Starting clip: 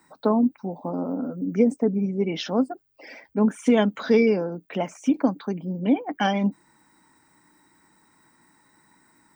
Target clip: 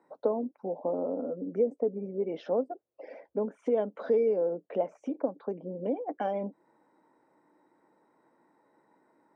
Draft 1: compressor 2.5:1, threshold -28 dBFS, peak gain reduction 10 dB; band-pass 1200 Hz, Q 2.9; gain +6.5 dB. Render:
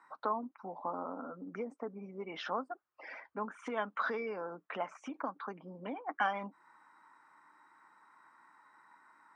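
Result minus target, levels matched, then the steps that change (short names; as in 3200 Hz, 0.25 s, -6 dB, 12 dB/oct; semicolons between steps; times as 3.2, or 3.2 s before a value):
1000 Hz band +10.5 dB
change: band-pass 520 Hz, Q 2.9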